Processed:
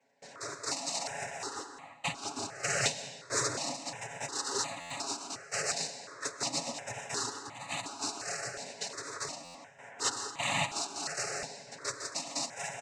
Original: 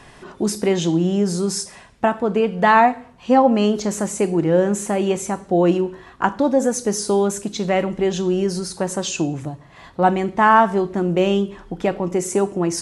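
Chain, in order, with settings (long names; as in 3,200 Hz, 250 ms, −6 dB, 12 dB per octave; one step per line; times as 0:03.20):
samples in bit-reversed order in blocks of 256 samples
high-shelf EQ 3,500 Hz −4.5 dB
in parallel at −7 dB: sample-rate reduction 3,400 Hz, jitter 0%
on the sum: cochlear-implant simulation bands 12
notch filter 3,300 Hz, Q 6.8
noise in a band 210–1,900 Hz −40 dBFS
noise gate with hold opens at −29 dBFS
comb filter 7.2 ms, depth 50%
on a send at −12.5 dB: convolution reverb RT60 1.7 s, pre-delay 85 ms
on the sum: buffer that repeats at 0:04.80/0:09.44, samples 512, times 8
step-sequenced phaser 2.8 Hz 330–1,500 Hz
level −8.5 dB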